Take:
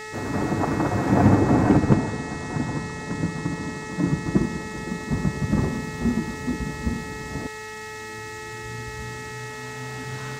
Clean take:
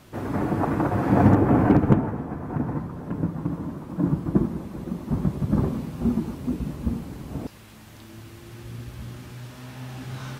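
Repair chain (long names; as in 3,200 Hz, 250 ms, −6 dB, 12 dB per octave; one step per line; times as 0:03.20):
hum removal 432.4 Hz, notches 6
notch filter 1,900 Hz, Q 30
noise reduction from a noise print 7 dB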